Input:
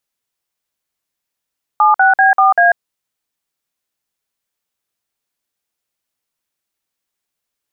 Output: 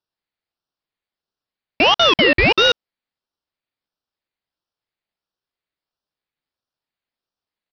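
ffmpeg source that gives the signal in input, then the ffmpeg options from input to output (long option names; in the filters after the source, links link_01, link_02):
-f lavfi -i "aevalsrc='0.335*clip(min(mod(t,0.194),0.143-mod(t,0.194))/0.002,0,1)*(eq(floor(t/0.194),0)*(sin(2*PI*852*mod(t,0.194))+sin(2*PI*1209*mod(t,0.194)))+eq(floor(t/0.194),1)*(sin(2*PI*770*mod(t,0.194))+sin(2*PI*1477*mod(t,0.194)))+eq(floor(t/0.194),2)*(sin(2*PI*770*mod(t,0.194))+sin(2*PI*1633*mod(t,0.194)))+eq(floor(t/0.194),3)*(sin(2*PI*770*mod(t,0.194))+sin(2*PI*1209*mod(t,0.194)))+eq(floor(t/0.194),4)*(sin(2*PI*697*mod(t,0.194))+sin(2*PI*1633*mod(t,0.194))))':duration=0.97:sample_rate=44100"
-af "highpass=frequency=600:poles=1,aresample=8000,acrusher=bits=2:mode=log:mix=0:aa=0.000001,aresample=44100,aeval=exprs='val(0)*sin(2*PI*1600*n/s+1600*0.35/1.5*sin(2*PI*1.5*n/s))':channel_layout=same"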